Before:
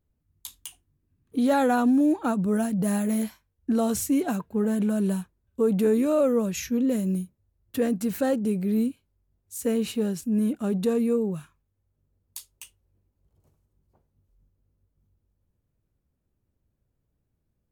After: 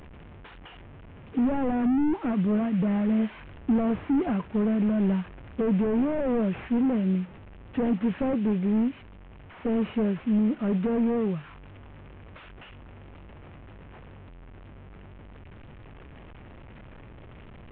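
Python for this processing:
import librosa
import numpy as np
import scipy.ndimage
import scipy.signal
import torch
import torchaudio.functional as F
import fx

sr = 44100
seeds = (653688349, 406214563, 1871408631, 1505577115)

p1 = fx.delta_mod(x, sr, bps=16000, step_db=-41.5)
p2 = fx.rider(p1, sr, range_db=5, speed_s=0.5)
p3 = p1 + (p2 * 10.0 ** (2.0 / 20.0))
y = p3 * 10.0 ** (-5.5 / 20.0)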